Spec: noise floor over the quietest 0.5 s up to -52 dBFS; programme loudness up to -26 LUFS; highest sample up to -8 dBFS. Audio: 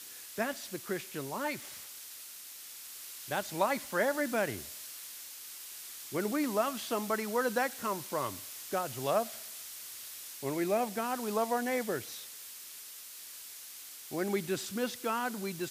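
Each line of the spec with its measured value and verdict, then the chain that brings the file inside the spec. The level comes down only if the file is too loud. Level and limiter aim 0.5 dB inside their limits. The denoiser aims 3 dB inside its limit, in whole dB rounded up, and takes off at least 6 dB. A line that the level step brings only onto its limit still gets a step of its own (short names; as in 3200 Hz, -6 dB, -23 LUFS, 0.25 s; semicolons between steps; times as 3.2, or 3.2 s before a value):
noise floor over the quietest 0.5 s -48 dBFS: fail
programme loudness -35.5 LUFS: OK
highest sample -15.0 dBFS: OK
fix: denoiser 7 dB, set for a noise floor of -48 dBFS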